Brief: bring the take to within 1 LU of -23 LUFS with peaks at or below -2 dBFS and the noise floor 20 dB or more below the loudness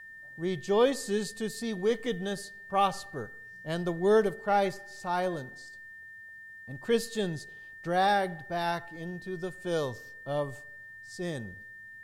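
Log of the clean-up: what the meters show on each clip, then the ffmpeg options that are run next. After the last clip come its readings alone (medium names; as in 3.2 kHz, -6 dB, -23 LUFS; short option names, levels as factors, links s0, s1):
steady tone 1.8 kHz; tone level -45 dBFS; loudness -31.0 LUFS; peak level -13.0 dBFS; loudness target -23.0 LUFS
-> -af "bandreject=f=1800:w=30"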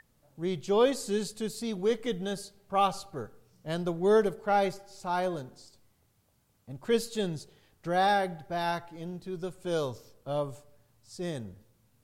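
steady tone not found; loudness -31.0 LUFS; peak level -13.0 dBFS; loudness target -23.0 LUFS
-> -af "volume=2.51"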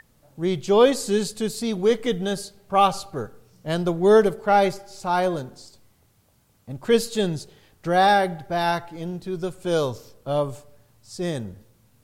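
loudness -23.0 LUFS; peak level -5.0 dBFS; noise floor -62 dBFS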